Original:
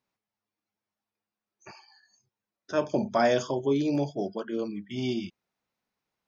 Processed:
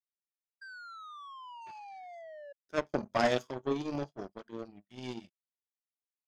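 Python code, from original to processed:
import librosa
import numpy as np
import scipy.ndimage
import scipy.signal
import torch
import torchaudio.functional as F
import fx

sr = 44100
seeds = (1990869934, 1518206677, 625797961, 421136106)

y = fx.spec_paint(x, sr, seeds[0], shape='fall', start_s=0.61, length_s=1.92, low_hz=560.0, high_hz=1600.0, level_db=-31.0)
y = fx.power_curve(y, sr, exponent=2.0)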